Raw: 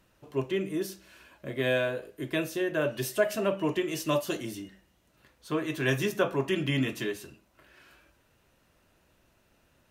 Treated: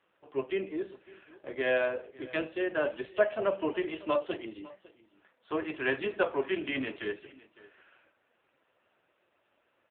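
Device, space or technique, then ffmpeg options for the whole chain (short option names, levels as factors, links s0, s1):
satellite phone: -af "highpass=370,lowpass=3200,aecho=1:1:552:0.0891,volume=1.19" -ar 8000 -c:a libopencore_amrnb -b:a 5900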